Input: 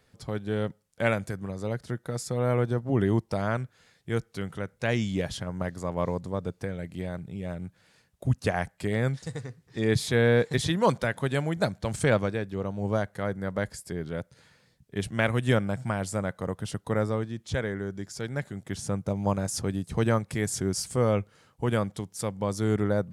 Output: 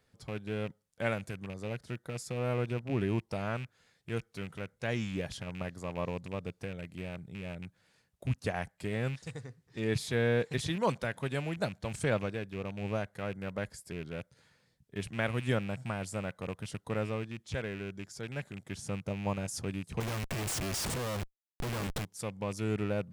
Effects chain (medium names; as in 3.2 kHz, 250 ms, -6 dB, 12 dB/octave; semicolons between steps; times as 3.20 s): rattle on loud lows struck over -32 dBFS, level -28 dBFS; 20.00–22.05 s: Schmitt trigger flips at -41 dBFS; trim -7 dB